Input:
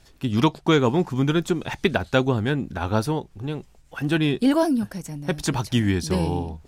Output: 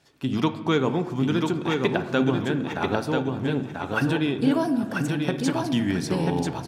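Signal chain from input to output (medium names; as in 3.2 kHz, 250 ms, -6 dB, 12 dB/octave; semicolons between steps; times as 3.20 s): recorder AGC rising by 16 dB/s; high-pass 150 Hz 12 dB/octave; treble shelf 6.5 kHz -6.5 dB; feedback delay 989 ms, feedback 22%, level -4 dB; on a send at -9 dB: reverberation RT60 1.2 s, pre-delay 7 ms; on the sum: trim -4 dB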